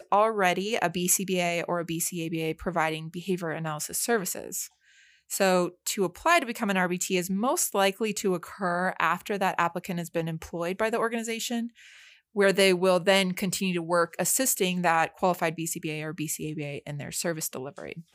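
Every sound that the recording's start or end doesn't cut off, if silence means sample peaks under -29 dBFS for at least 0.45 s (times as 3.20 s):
5.31–11.66 s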